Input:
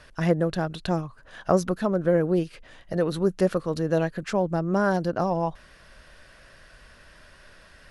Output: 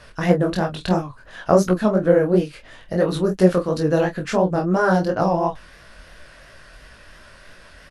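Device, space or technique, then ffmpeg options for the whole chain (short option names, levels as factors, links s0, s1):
double-tracked vocal: -filter_complex "[0:a]asplit=2[s0][s1];[s1]adelay=27,volume=0.398[s2];[s0][s2]amix=inputs=2:normalize=0,flanger=delay=16.5:depth=7.2:speed=2.9,volume=2.51"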